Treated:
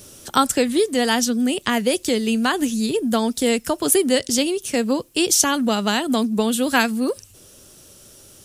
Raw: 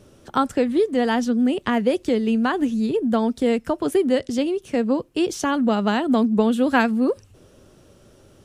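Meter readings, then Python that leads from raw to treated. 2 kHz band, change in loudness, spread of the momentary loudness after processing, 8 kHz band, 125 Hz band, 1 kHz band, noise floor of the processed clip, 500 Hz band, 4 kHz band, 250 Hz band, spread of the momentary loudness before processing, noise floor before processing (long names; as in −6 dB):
+3.5 dB, +1.5 dB, 5 LU, +17.5 dB, −1.0 dB, +1.0 dB, −48 dBFS, 0.0 dB, +10.0 dB, −0.5 dB, 5 LU, −53 dBFS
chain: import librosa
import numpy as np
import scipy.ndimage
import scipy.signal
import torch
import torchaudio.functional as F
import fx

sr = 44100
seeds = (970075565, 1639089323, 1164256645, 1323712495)

y = fx.high_shelf(x, sr, hz=2500.0, db=11.5)
y = fx.rider(y, sr, range_db=10, speed_s=2.0)
y = fx.high_shelf(y, sr, hz=5600.0, db=12.0)
y = y * librosa.db_to_amplitude(-1.0)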